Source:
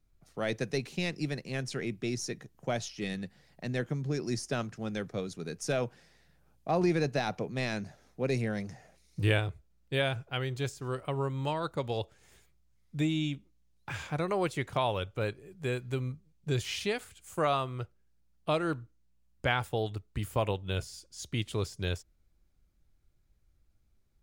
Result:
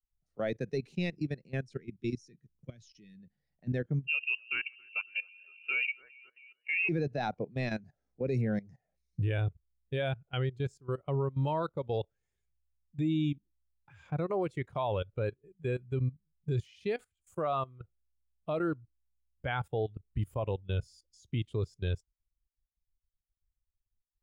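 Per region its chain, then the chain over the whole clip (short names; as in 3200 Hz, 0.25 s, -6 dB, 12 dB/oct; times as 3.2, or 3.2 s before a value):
1.77–3.2 brick-wall FIR low-pass 11000 Hz + bell 750 Hz -15 dB 1.1 oct
4.07–6.89 low shelf 490 Hz -2 dB + echo with dull and thin repeats by turns 0.136 s, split 860 Hz, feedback 67%, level -4 dB + inverted band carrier 2900 Hz
whole clip: level quantiser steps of 17 dB; spectral expander 1.5:1; gain -1.5 dB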